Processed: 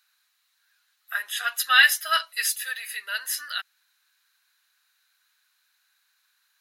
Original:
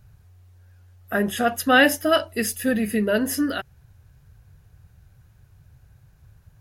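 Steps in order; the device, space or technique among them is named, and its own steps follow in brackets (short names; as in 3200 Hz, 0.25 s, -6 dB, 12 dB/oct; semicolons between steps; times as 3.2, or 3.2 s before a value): 1.43–2.56 comb 6.2 ms, depth 86%; headphones lying on a table (HPF 1300 Hz 24 dB/oct; bell 4000 Hz +11 dB 0.26 oct)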